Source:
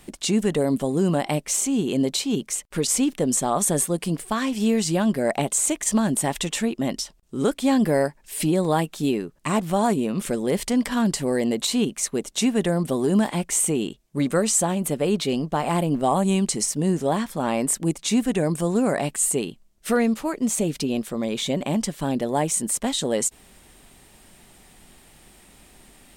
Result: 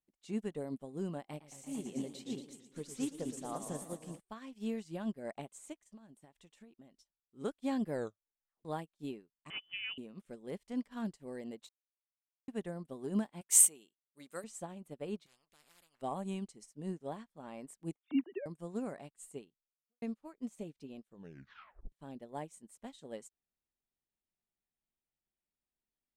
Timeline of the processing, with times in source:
1.18–4.2 warbling echo 0.114 s, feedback 78%, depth 159 cents, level -7 dB
5.73–6.95 compressor 10:1, threshold -23 dBFS
7.92 tape stop 0.73 s
9.5–9.98 inverted band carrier 3200 Hz
11.69–12.48 mute
13.41–14.44 RIAA curve recording
15.26–16.02 spectral compressor 10:1
17.96–18.46 sine-wave speech
19.4–20.02 studio fade out
21.07 tape stop 0.85 s
whole clip: high shelf 4400 Hz -5.5 dB; upward expander 2.5:1, over -39 dBFS; gain -7 dB

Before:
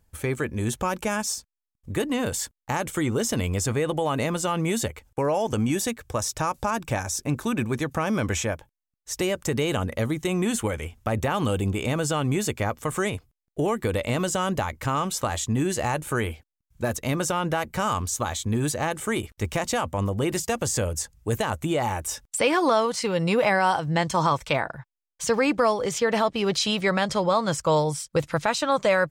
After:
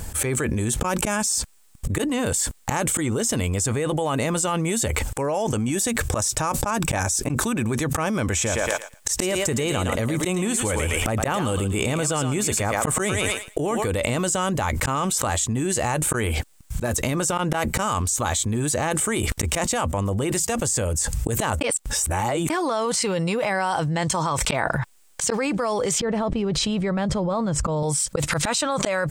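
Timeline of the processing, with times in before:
8.34–13.91 thinning echo 0.113 s, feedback 16%, high-pass 550 Hz, level -6 dB
16.86–17.38 compressor, threshold -29 dBFS
21.61–22.5 reverse
26–27.83 tilt -3.5 dB/oct
whole clip: bell 8200 Hz +8.5 dB 0.51 oct; auto swell 0.428 s; fast leveller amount 100%; gain -8 dB

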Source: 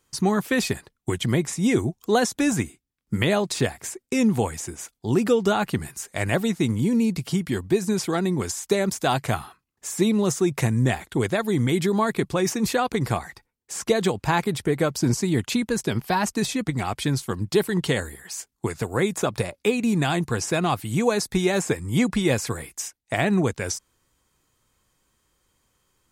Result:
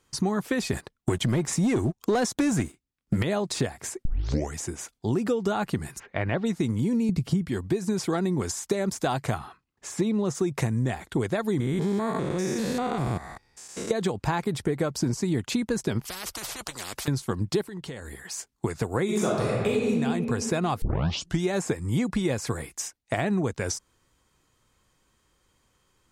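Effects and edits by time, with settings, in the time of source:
0.73–3.23 sample leveller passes 2
4.05 tape start 0.50 s
5.98–6.45 LPF 2500 Hz -> 4500 Hz 24 dB/oct
7.09–7.49 low shelf 310 Hz +12 dB
9.38–10.35 high shelf 8200 Hz -11.5 dB
11.6–13.91 stepped spectrum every 0.2 s
16.05–17.08 spectral compressor 10:1
17.61–18.21 compressor 8:1, threshold -35 dBFS
19.04–19.9 reverb throw, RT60 1.6 s, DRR -6.5 dB
20.82 tape start 0.61 s
whole clip: high shelf 11000 Hz -12 dB; compressor, threshold -24 dBFS; dynamic EQ 2700 Hz, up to -4 dB, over -46 dBFS, Q 0.98; gain +2 dB

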